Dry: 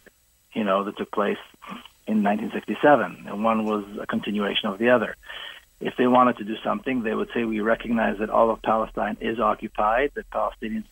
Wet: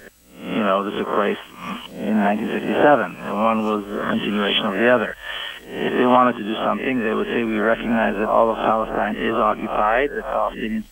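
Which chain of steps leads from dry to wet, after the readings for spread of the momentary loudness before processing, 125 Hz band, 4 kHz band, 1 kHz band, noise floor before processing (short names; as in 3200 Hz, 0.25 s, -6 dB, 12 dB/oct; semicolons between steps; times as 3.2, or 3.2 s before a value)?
14 LU, +4.0 dB, +6.0 dB, +3.5 dB, -60 dBFS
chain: spectral swells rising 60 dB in 0.50 s; in parallel at 0 dB: compressor, threshold -29 dBFS, peak gain reduction 17.5 dB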